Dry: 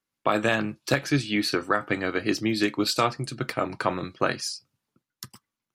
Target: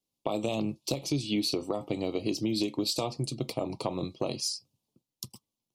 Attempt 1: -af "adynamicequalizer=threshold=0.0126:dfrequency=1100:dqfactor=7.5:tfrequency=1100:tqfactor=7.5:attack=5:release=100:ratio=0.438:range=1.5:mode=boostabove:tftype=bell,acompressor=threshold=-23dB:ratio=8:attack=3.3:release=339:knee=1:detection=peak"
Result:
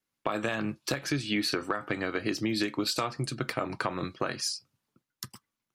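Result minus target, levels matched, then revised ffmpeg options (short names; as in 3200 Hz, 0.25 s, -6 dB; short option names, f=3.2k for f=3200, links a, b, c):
2000 Hz band +11.5 dB
-af "adynamicequalizer=threshold=0.0126:dfrequency=1100:dqfactor=7.5:tfrequency=1100:tqfactor=7.5:attack=5:release=100:ratio=0.438:range=1.5:mode=boostabove:tftype=bell,asuperstop=centerf=1600:order=4:qfactor=0.77,acompressor=threshold=-23dB:ratio=8:attack=3.3:release=339:knee=1:detection=peak"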